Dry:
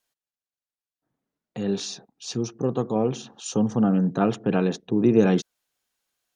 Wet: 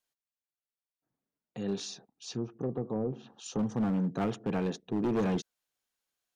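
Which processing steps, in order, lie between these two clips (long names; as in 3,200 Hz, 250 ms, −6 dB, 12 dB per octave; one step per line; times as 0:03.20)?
hard clipping −17.5 dBFS, distortion −11 dB
0:01.89–0:03.59: treble cut that deepens with the level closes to 630 Hz, closed at −20.5 dBFS
level −7.5 dB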